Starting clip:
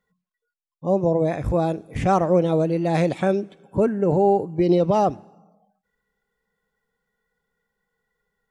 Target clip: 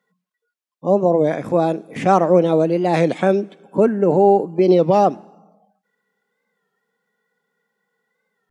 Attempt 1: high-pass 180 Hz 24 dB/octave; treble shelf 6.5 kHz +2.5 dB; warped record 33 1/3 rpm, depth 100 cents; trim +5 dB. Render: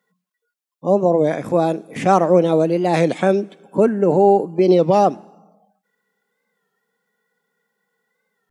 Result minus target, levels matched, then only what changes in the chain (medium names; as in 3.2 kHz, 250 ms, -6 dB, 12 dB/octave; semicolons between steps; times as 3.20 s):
8 kHz band +3.5 dB
change: treble shelf 6.5 kHz -4.5 dB